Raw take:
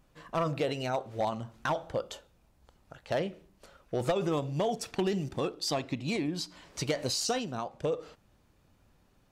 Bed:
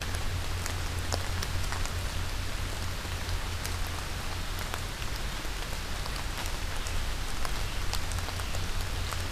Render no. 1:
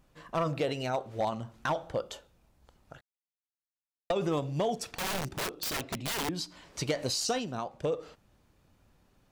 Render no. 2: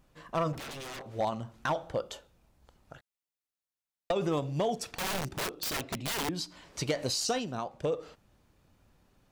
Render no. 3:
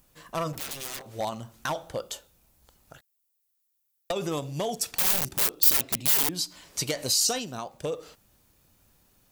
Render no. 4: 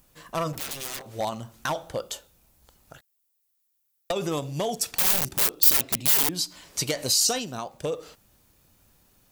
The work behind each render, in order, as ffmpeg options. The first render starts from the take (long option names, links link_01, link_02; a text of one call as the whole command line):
ffmpeg -i in.wav -filter_complex "[0:a]asettb=1/sr,asplit=3[link_01][link_02][link_03];[link_01]atrim=end=4.984[link_04];[link_02]atrim=start=4.98:end=6.29,asetpts=PTS-STARTPTS,afade=type=in:duration=0.004:curve=qsin,afade=type=out:start_time=1.306:duration=0.004:curve=qsin,aeval=exprs='(mod(25.1*val(0)+1,2)-1)/25.1':channel_layout=same[link_05];[link_03]atrim=start=6.286[link_06];[link_04][link_05]acrossfade=duration=0.004:curve1=hsin:curve2=qsin[link_07];[link_07][link_06]acrossfade=duration=0.004:curve1=qsin:curve2=hsin,asplit=3[link_08][link_09][link_10];[link_08]atrim=end=3.01,asetpts=PTS-STARTPTS,afade=type=out:start_time=3.006:duration=0.004:curve=hsin[link_11];[link_09]atrim=start=3.01:end=4.1,asetpts=PTS-STARTPTS,volume=0[link_12];[link_10]atrim=start=4.1,asetpts=PTS-STARTPTS,afade=type=in:duration=0.004:curve=hsin[link_13];[link_11][link_12][link_13]concat=n=3:v=0:a=1" out.wav
ffmpeg -i in.wav -filter_complex "[0:a]asplit=3[link_01][link_02][link_03];[link_01]afade=type=out:start_time=0.52:duration=0.02[link_04];[link_02]aeval=exprs='0.0141*(abs(mod(val(0)/0.0141+3,4)-2)-1)':channel_layout=same,afade=type=in:start_time=0.52:duration=0.02,afade=type=out:start_time=1.06:duration=0.02[link_05];[link_03]afade=type=in:start_time=1.06:duration=0.02[link_06];[link_04][link_05][link_06]amix=inputs=3:normalize=0" out.wav
ffmpeg -i in.wav -af "aemphasis=mode=production:type=75fm" out.wav
ffmpeg -i in.wav -af "volume=2dB" out.wav